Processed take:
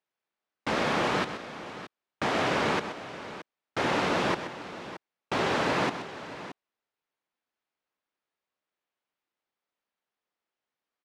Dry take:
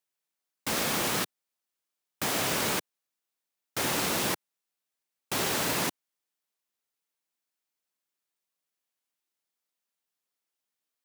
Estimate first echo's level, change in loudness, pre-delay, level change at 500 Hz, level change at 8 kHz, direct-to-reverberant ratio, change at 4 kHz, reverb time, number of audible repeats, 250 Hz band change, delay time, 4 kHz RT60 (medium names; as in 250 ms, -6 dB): -10.5 dB, -0.5 dB, no reverb, +5.5 dB, -13.0 dB, no reverb, -2.5 dB, no reverb, 2, +4.0 dB, 127 ms, no reverb